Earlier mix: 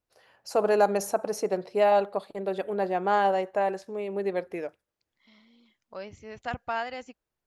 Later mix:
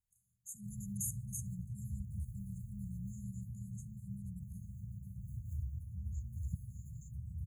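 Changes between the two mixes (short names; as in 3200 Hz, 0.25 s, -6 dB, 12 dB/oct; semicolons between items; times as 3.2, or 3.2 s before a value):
first voice: add bell 640 Hz -9.5 dB 2.7 oct; background: unmuted; master: add brick-wall FIR band-stop 200–6300 Hz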